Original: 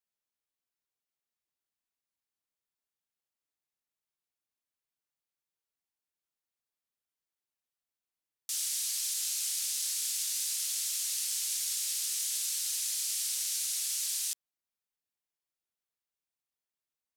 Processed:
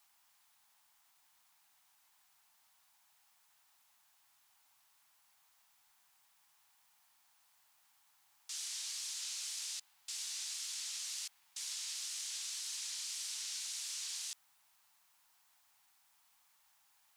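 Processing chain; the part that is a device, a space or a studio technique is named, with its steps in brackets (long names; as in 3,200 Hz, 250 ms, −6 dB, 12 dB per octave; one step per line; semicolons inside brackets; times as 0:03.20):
worn cassette (low-pass filter 6,400 Hz 12 dB per octave; tape wow and flutter; tape dropouts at 0:09.80/0:11.28, 279 ms −21 dB; white noise bed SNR 24 dB)
low shelf with overshoot 640 Hz −9 dB, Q 3
level −4.5 dB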